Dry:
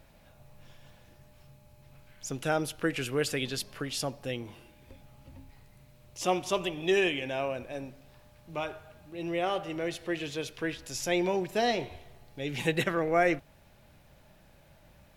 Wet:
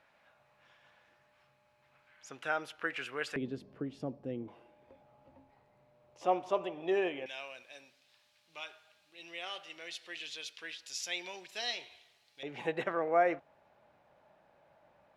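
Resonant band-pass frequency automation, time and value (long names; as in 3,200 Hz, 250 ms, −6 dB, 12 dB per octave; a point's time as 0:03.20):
resonant band-pass, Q 1.1
1,500 Hz
from 0:03.36 270 Hz
from 0:04.48 710 Hz
from 0:07.26 4,000 Hz
from 0:12.43 820 Hz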